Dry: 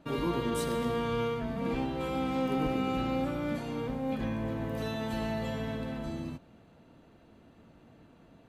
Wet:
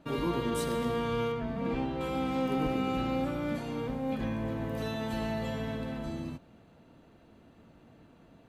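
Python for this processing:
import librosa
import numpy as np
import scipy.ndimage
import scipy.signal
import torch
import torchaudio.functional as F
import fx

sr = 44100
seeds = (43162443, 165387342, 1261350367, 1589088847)

y = fx.lowpass(x, sr, hz=3900.0, slope=6, at=(1.32, 2.01))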